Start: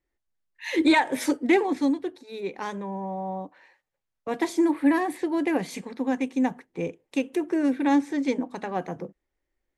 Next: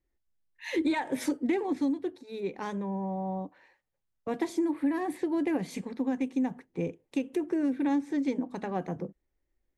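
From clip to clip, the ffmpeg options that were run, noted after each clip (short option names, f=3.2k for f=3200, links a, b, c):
-af "lowshelf=f=360:g=9,acompressor=threshold=-20dB:ratio=4,volume=-5.5dB"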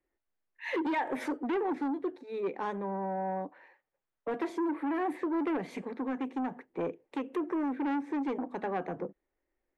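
-filter_complex "[0:a]asplit=2[a][b];[b]aeval=exprs='0.133*sin(PI/2*3.55*val(0)/0.133)':c=same,volume=-12dB[c];[a][c]amix=inputs=2:normalize=0,acrossover=split=280 2600:gain=0.2 1 0.141[d][e][f];[d][e][f]amix=inputs=3:normalize=0,volume=-3dB"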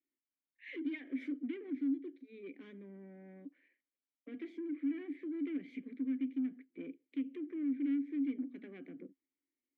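-filter_complex "[0:a]asplit=3[a][b][c];[a]bandpass=f=270:t=q:w=8,volume=0dB[d];[b]bandpass=f=2.29k:t=q:w=8,volume=-6dB[e];[c]bandpass=f=3.01k:t=q:w=8,volume=-9dB[f];[d][e][f]amix=inputs=3:normalize=0,volume=1dB"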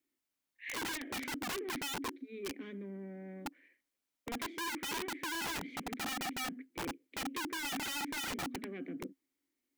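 -af "aeval=exprs='(mod(106*val(0)+1,2)-1)/106':c=same,volume=7dB"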